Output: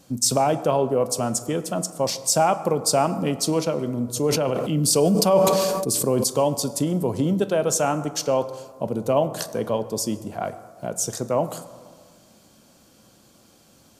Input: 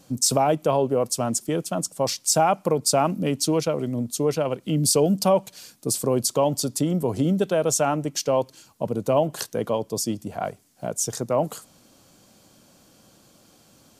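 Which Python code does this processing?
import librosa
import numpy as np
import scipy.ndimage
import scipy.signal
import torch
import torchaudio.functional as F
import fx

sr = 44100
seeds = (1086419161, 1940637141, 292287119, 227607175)

y = fx.rev_fdn(x, sr, rt60_s=1.8, lf_ratio=0.95, hf_ratio=0.45, size_ms=82.0, drr_db=10.5)
y = fx.sustainer(y, sr, db_per_s=24.0, at=(4.07, 6.24))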